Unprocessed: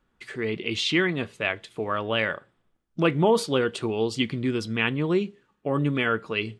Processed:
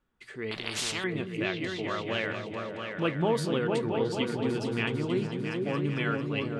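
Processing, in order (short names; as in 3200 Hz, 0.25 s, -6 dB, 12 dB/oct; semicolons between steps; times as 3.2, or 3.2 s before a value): repeats that get brighter 0.224 s, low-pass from 200 Hz, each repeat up 2 oct, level 0 dB; 0.51–1.04 spectral compressor 4:1; gain -7 dB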